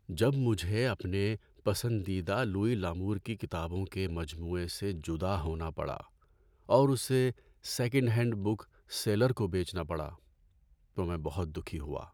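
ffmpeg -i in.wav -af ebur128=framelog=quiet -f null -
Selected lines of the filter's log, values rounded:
Integrated loudness:
  I:         -32.7 LUFS
  Threshold: -43.1 LUFS
Loudness range:
  LRA:         4.9 LU
  Threshold: -53.0 LUFS
  LRA low:   -35.9 LUFS
  LRA high:  -31.0 LUFS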